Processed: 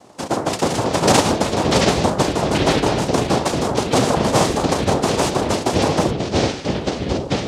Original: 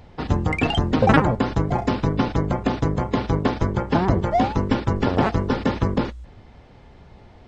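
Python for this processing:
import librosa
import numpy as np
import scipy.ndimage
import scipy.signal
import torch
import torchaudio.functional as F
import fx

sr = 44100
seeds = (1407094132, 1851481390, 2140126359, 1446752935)

y = fx.filter_lfo_notch(x, sr, shape='square', hz=1.9, low_hz=520.0, high_hz=2700.0, q=1.8)
y = fx.noise_vocoder(y, sr, seeds[0], bands=2)
y = fx.echo_pitch(y, sr, ms=197, semitones=-6, count=2, db_per_echo=-3.0)
y = y * librosa.db_to_amplitude(2.0)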